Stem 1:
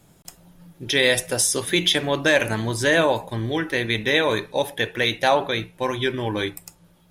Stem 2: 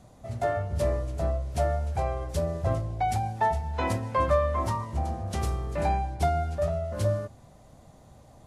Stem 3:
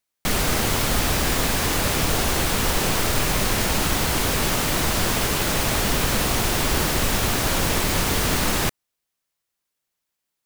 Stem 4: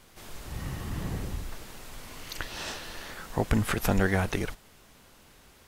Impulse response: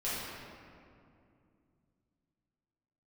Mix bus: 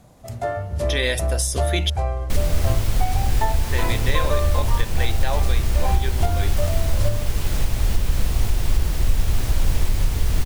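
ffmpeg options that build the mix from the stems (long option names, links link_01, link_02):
-filter_complex "[0:a]volume=-4.5dB,asplit=3[link_01][link_02][link_03];[link_01]atrim=end=1.9,asetpts=PTS-STARTPTS,afade=type=out:start_time=1.896:duration=0.004:curve=hsin[link_04];[link_02]atrim=start=1.9:end=3.71,asetpts=PTS-STARTPTS,volume=0[link_05];[link_03]atrim=start=3.71,asetpts=PTS-STARTPTS,afade=type=in:duration=0.004:curve=hsin[link_06];[link_04][link_05][link_06]concat=n=3:v=0:a=1[link_07];[1:a]volume=2dB[link_08];[2:a]lowshelf=frequency=230:gain=9,equalizer=frequency=1300:width=1.5:gain=-3,adelay=2050,volume=-8.5dB[link_09];[3:a]volume=-18dB[link_10];[link_07][link_08][link_09][link_10]amix=inputs=4:normalize=0,asubboost=boost=4:cutoff=92,alimiter=limit=-7.5dB:level=0:latency=1:release=429"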